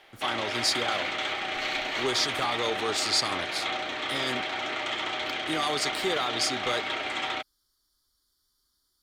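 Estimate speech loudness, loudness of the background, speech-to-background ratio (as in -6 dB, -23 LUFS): -29.5 LUFS, -30.0 LUFS, 0.5 dB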